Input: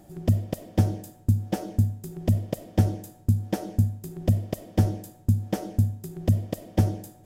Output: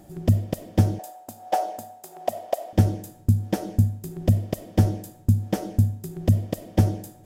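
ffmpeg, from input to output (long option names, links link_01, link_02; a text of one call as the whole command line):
ffmpeg -i in.wav -filter_complex "[0:a]asettb=1/sr,asplit=3[link_01][link_02][link_03];[link_01]atrim=end=0.994[link_04];[link_02]atrim=start=0.99:end=2.73,asetpts=PTS-STARTPTS,afade=type=in:duration=0.004:curve=qsin,afade=type=out:start_time=1.736:duration=0.004:curve=qsin,highpass=frequency=710:width_type=q:width=4.9[link_05];[link_03]atrim=start=2.726[link_06];[link_04][link_05]acrossfade=duration=0.004:curve1=hsin:curve2=qsin[link_07];[link_07][link_06]acrossfade=duration=0.004:curve1=qsin:curve2=hsin,volume=2.5dB" out.wav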